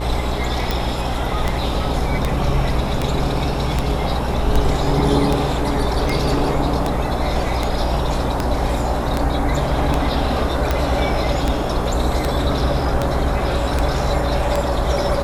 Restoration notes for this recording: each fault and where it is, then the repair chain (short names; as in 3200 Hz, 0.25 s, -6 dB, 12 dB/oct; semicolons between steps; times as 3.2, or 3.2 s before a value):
buzz 60 Hz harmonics 19 -24 dBFS
tick 78 rpm -5 dBFS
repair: de-click; de-hum 60 Hz, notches 19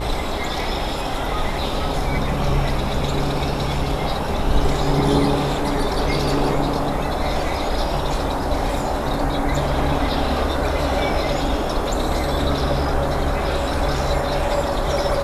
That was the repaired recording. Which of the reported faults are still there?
none